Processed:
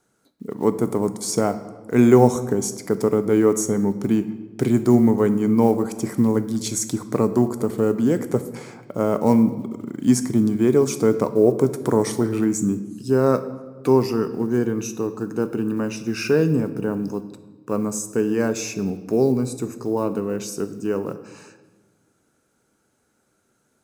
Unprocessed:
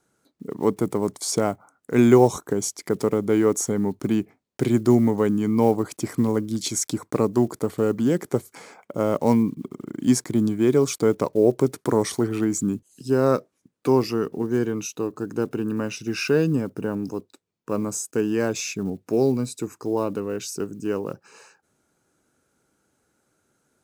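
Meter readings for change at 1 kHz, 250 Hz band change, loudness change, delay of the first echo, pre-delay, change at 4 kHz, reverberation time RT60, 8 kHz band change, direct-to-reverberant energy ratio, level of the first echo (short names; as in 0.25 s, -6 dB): +1.5 dB, +2.5 dB, +2.0 dB, none, 4 ms, -1.5 dB, 1.3 s, +0.5 dB, 10.0 dB, none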